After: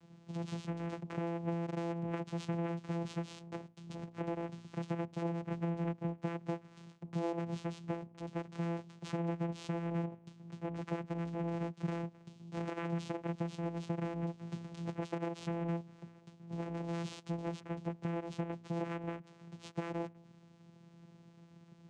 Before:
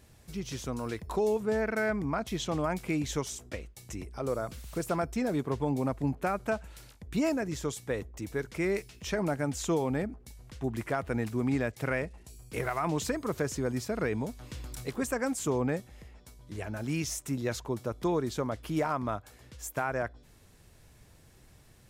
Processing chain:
lower of the sound and its delayed copy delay 1.6 ms
downward compressor, threshold −36 dBFS, peak gain reduction 10 dB
channel vocoder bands 4, saw 169 Hz
level +3.5 dB

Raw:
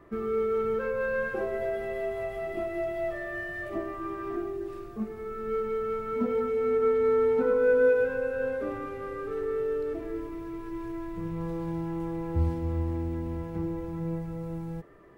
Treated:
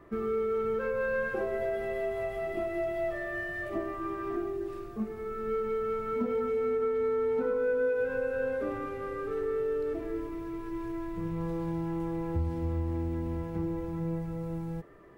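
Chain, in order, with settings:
downward compressor, threshold −26 dBFS, peak gain reduction 7.5 dB

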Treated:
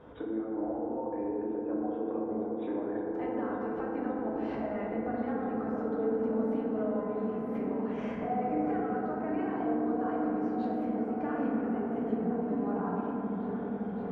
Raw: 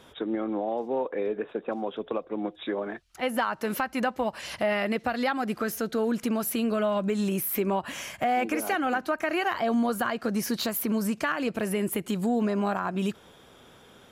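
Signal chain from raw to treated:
low-pass filter 1,100 Hz 12 dB per octave
downward compressor 6 to 1, threshold −40 dBFS, peak gain reduction 17 dB
echo whose low-pass opens from repeat to repeat 562 ms, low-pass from 200 Hz, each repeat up 1 octave, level 0 dB
feedback delay network reverb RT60 2.9 s, high-frequency decay 0.3×, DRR −5 dB

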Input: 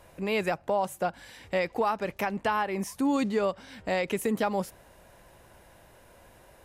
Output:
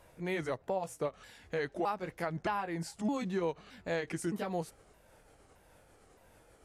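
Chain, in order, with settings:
pitch shifter swept by a sawtooth −5 semitones, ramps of 617 ms
level −5.5 dB

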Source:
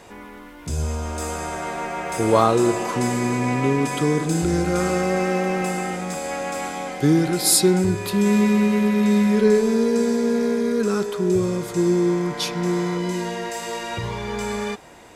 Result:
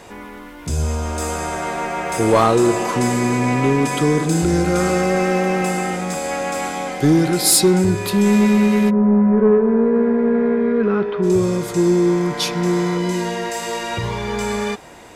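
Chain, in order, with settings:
0:08.89–0:11.22: low-pass filter 1,100 Hz → 2,900 Hz 24 dB per octave
soft clipping −10 dBFS, distortion −21 dB
level +4.5 dB

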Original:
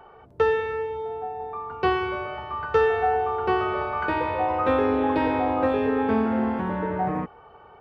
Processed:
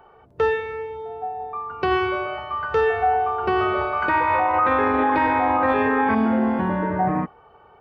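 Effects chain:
noise reduction from a noise print of the clip's start 7 dB
0:04.09–0:06.15: flat-topped bell 1,400 Hz +9.5 dB
brickwall limiter −16.5 dBFS, peak gain reduction 9.5 dB
level +5 dB

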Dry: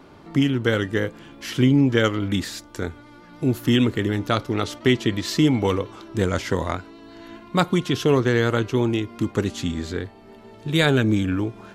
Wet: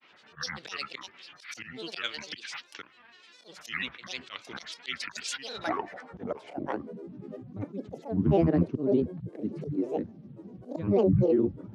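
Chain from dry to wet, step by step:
band-pass filter sweep 2,700 Hz → 230 Hz, 0:05.22–0:07.11
in parallel at −1 dB: compressor whose output falls as the input rises −26 dBFS, ratio −0.5
on the sum: volume swells 200 ms
bit reduction 12 bits
Chebyshev band-pass filter 110–6,400 Hz, order 4
granular cloud, spray 14 ms, pitch spread up and down by 12 semitones

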